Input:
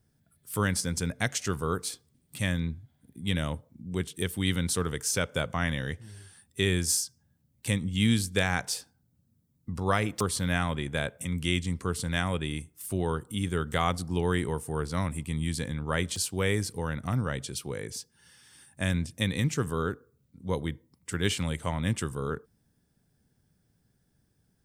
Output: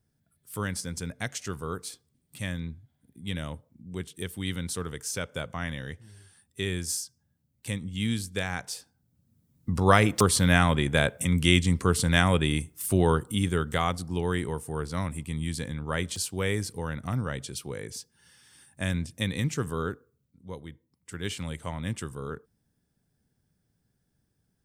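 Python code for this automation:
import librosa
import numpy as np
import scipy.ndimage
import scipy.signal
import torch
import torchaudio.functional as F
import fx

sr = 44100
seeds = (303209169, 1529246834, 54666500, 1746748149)

y = fx.gain(x, sr, db=fx.line((8.77, -4.5), (9.7, 7.0), (13.11, 7.0), (13.95, -1.0), (19.88, -1.0), (20.62, -11.0), (21.5, -4.0)))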